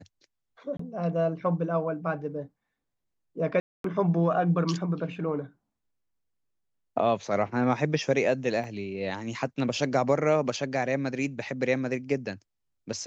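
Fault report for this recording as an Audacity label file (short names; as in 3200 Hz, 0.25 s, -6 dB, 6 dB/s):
0.770000	0.790000	gap 24 ms
3.600000	3.840000	gap 0.243 s
8.640000	8.640000	gap 2 ms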